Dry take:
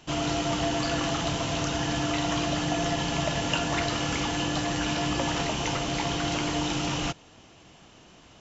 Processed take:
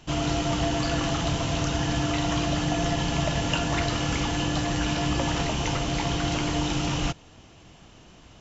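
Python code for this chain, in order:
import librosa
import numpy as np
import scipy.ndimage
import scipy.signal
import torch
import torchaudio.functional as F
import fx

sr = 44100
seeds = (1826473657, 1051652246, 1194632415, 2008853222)

y = fx.low_shelf(x, sr, hz=120.0, db=10.0)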